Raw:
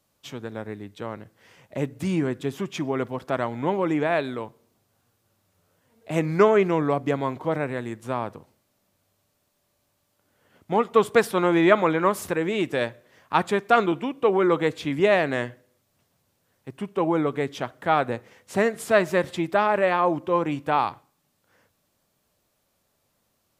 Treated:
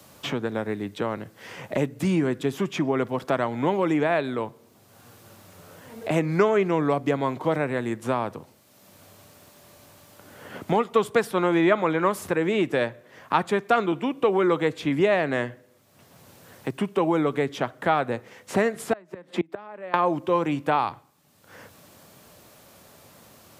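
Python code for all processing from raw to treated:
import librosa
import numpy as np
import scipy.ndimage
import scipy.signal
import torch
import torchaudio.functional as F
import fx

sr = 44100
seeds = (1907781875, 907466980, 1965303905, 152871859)

y = fx.chain(x, sr, fx.steep_highpass(hz=160.0, slope=72),
    fx.high_shelf(hz=3100.0, db=-9.5),
    fx.gate_flip(shuts_db=-17.0, range_db=-28), at=(18.93, 19.94))
y = scipy.signal.sosfilt(scipy.signal.butter(2, 77.0, 'highpass', fs=sr, output='sos'), y)
y = fx.band_squash(y, sr, depth_pct=70)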